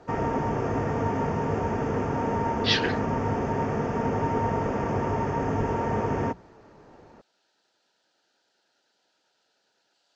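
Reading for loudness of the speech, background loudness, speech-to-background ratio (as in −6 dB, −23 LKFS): −27.5 LKFS, −27.5 LKFS, 0.0 dB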